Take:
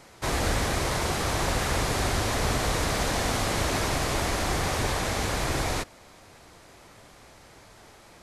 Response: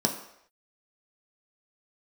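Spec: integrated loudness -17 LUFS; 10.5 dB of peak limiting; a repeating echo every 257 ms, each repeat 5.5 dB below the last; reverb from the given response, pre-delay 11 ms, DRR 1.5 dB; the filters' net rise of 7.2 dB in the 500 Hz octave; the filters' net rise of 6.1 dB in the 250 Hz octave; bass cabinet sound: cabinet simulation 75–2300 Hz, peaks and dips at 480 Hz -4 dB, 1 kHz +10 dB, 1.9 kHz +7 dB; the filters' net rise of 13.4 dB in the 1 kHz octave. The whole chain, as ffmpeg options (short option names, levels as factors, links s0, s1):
-filter_complex "[0:a]equalizer=f=250:t=o:g=5.5,equalizer=f=500:t=o:g=7,equalizer=f=1000:t=o:g=7,alimiter=limit=0.119:level=0:latency=1,aecho=1:1:257|514|771|1028|1285|1542|1799:0.531|0.281|0.149|0.079|0.0419|0.0222|0.0118,asplit=2[s0][s1];[1:a]atrim=start_sample=2205,adelay=11[s2];[s1][s2]afir=irnorm=-1:irlink=0,volume=0.282[s3];[s0][s3]amix=inputs=2:normalize=0,highpass=f=75:w=0.5412,highpass=f=75:w=1.3066,equalizer=f=480:t=q:w=4:g=-4,equalizer=f=1000:t=q:w=4:g=10,equalizer=f=1900:t=q:w=4:g=7,lowpass=f=2300:w=0.5412,lowpass=f=2300:w=1.3066,volume=1.33"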